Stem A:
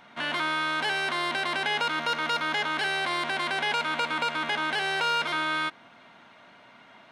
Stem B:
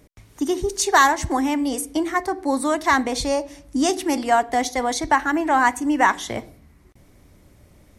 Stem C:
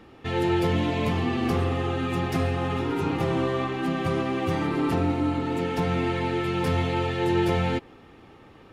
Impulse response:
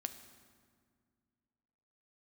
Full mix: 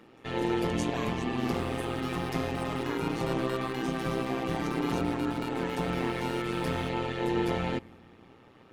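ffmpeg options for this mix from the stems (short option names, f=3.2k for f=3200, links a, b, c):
-filter_complex "[0:a]acrusher=bits=3:mix=0:aa=0.5,adelay=1200,volume=-7dB[a];[1:a]volume=-13.5dB[b];[2:a]volume=-3.5dB,asplit=2[c][d];[d]volume=-12dB[e];[a][b]amix=inputs=2:normalize=0,acompressor=threshold=-38dB:ratio=3,volume=0dB[f];[3:a]atrim=start_sample=2205[g];[e][g]afir=irnorm=-1:irlink=0[h];[c][f][h]amix=inputs=3:normalize=0,highpass=f=110:w=0.5412,highpass=f=110:w=1.3066,tremolo=f=120:d=0.71"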